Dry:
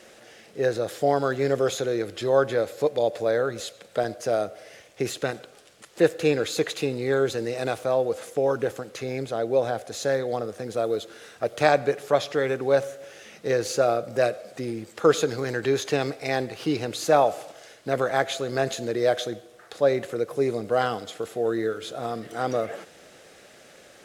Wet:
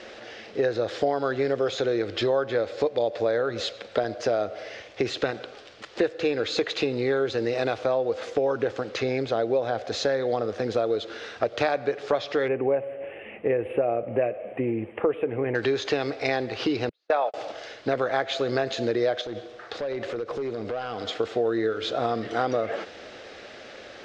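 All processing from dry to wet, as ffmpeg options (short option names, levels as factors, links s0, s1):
-filter_complex "[0:a]asettb=1/sr,asplit=3[s0][s1][s2];[s0]atrim=end=12.484[s3];[s1]atrim=start=12.48:end=15.55,asetpts=PTS-STARTPTS,afade=t=in:d=0.004:c=qsin,afade=t=out:st=3.066:d=0.004:c=qsin,asuperstop=centerf=5400:order=12:qfactor=0.8,equalizer=f=1400:t=o:w=0.56:g=-12[s4];[s2]atrim=start=15.546[s5];[s3][s4]acrossfade=d=0.004:c1=hsin:c2=qsin[s6];[s6][s5]acrossfade=d=0.004:c1=qsin:c2=hsin,asettb=1/sr,asplit=3[s7][s8][s9];[s7]atrim=end=16.894[s10];[s8]atrim=start=16.89:end=17.34,asetpts=PTS-STARTPTS,afade=t=in:d=0.004:c=qsin,afade=t=out:st=0.446:d=0.004:c=qsin,highpass=570,lowpass=4000,agate=range=0.00562:threshold=0.0501:ratio=16:release=100:detection=peak[s11];[s9]atrim=start=17.336[s12];[s10][s11]acrossfade=d=0.004:c1=hsin:c2=qsin[s13];[s13][s12]acrossfade=d=0.004:c1=qsin:c2=hsin,asettb=1/sr,asplit=3[s14][s15][s16];[s14]atrim=end=19.214[s17];[s15]atrim=start=19.21:end=21.06,asetpts=PTS-STARTPTS,afade=t=in:d=0.004:c=qsin,afade=t=out:st=1.846:d=0.004:c=qsin,acompressor=threshold=0.0224:ratio=10:attack=3.2:release=140:knee=1:detection=peak,volume=42.2,asoftclip=hard,volume=0.0237[s18];[s16]atrim=start=21.056[s19];[s17][s18]acrossfade=d=0.004:c1=hsin:c2=qsin[s20];[s20][s19]acrossfade=d=0.004:c1=qsin:c2=hsin,acompressor=threshold=0.0355:ratio=6,lowpass=f=5000:w=0.5412,lowpass=f=5000:w=1.3066,equalizer=f=160:w=4.7:g=-15,volume=2.51"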